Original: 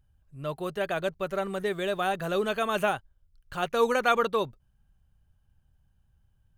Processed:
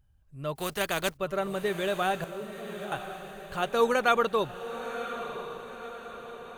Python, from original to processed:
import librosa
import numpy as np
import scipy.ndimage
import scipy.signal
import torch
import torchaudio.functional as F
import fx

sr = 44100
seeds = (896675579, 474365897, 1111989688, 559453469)

y = fx.spec_flatten(x, sr, power=0.58, at=(0.55, 1.16), fade=0.02)
y = fx.ladder_bandpass(y, sr, hz=260.0, resonance_pct=20, at=(2.24, 2.92))
y = fx.echo_diffused(y, sr, ms=1015, feedback_pct=52, wet_db=-10.5)